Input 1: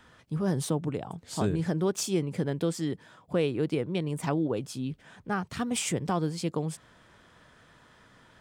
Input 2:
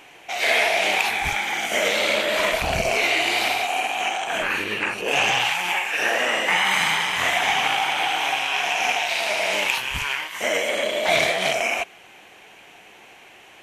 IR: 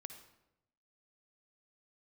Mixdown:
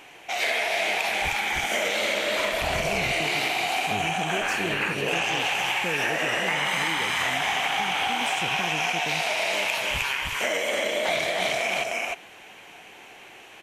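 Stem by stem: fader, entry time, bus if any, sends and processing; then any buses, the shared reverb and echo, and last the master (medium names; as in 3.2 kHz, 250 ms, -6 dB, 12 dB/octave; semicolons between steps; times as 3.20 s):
-3.5 dB, 2.50 s, no send, no echo send, none
-0.5 dB, 0.00 s, no send, echo send -4.5 dB, none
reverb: none
echo: delay 308 ms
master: compression, threshold -22 dBFS, peak gain reduction 7.5 dB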